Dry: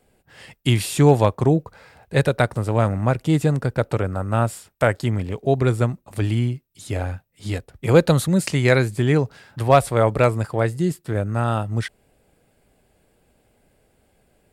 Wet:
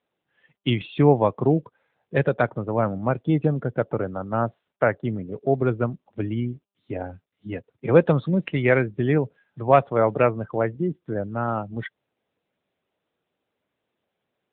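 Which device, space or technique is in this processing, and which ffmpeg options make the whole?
mobile call with aggressive noise cancelling: -filter_complex "[0:a]asplit=3[link_01][link_02][link_03];[link_01]afade=type=out:start_time=4.36:duration=0.02[link_04];[link_02]highshelf=frequency=4400:gain=-5,afade=type=in:start_time=4.36:duration=0.02,afade=type=out:start_time=5.28:duration=0.02[link_05];[link_03]afade=type=in:start_time=5.28:duration=0.02[link_06];[link_04][link_05][link_06]amix=inputs=3:normalize=0,highpass=150,afftdn=noise_reduction=19:noise_floor=-31,volume=-1dB" -ar 8000 -c:a libopencore_amrnb -b:a 10200

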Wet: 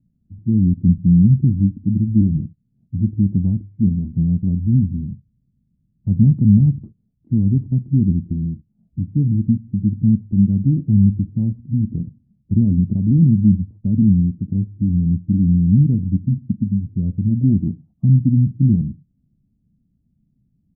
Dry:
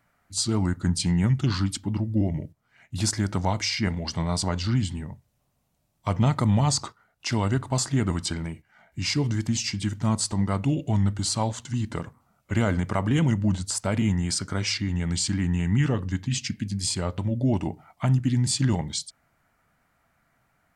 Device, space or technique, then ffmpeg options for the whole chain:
the neighbour's flat through the wall: -af "lowpass=frequency=250:width=0.5412,lowpass=frequency=250:width=1.3066,equalizer=frequency=200:width_type=o:width=0.76:gain=5.5,volume=7.5dB"

